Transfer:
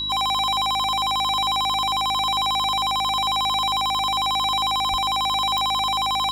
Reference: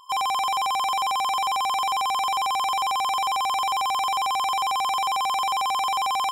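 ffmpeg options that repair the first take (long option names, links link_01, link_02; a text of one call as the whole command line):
ffmpeg -i in.wav -filter_complex "[0:a]adeclick=threshold=4,bandreject=frequency=51.9:width_type=h:width=4,bandreject=frequency=103.8:width_type=h:width=4,bandreject=frequency=155.7:width_type=h:width=4,bandreject=frequency=207.6:width_type=h:width=4,bandreject=frequency=259.5:width_type=h:width=4,bandreject=frequency=311.4:width_type=h:width=4,bandreject=frequency=3900:width=30,asplit=3[link_01][link_02][link_03];[link_01]afade=type=out:start_time=4.9:duration=0.02[link_04];[link_02]highpass=frequency=140:width=0.5412,highpass=frequency=140:width=1.3066,afade=type=in:start_time=4.9:duration=0.02,afade=type=out:start_time=5.02:duration=0.02[link_05];[link_03]afade=type=in:start_time=5.02:duration=0.02[link_06];[link_04][link_05][link_06]amix=inputs=3:normalize=0" out.wav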